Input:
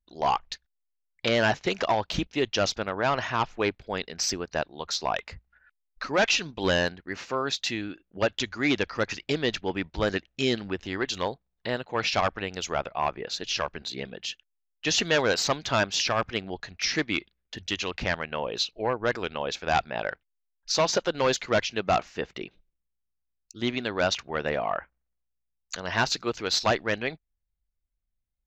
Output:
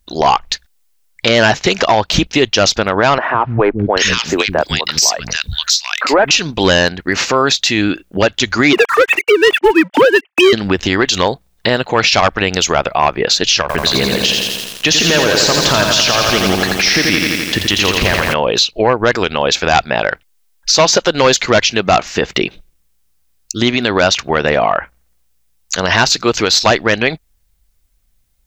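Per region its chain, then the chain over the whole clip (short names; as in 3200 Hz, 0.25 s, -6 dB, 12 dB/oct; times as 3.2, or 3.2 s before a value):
3.18–6.31 high shelf 3900 Hz +11.5 dB + three bands offset in time mids, lows, highs 0.16/0.79 s, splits 250/1600 Hz
8.73–10.53 sine-wave speech + sample leveller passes 2
13.61–18.34 high shelf 6300 Hz -11.5 dB + compressor, threshold -30 dBFS + lo-fi delay 84 ms, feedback 80%, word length 9-bit, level -4.5 dB
whole clip: high shelf 3800 Hz +6.5 dB; compressor, threshold -29 dBFS; maximiser +23 dB; gain -1 dB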